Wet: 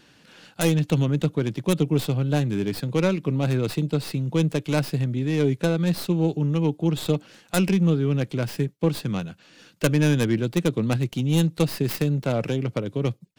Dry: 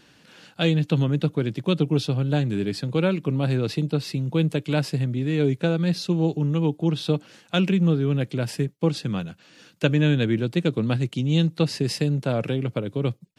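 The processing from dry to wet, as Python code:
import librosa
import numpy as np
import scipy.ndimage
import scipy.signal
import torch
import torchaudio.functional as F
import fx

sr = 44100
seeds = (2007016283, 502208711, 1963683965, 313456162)

y = fx.tracing_dist(x, sr, depth_ms=0.24)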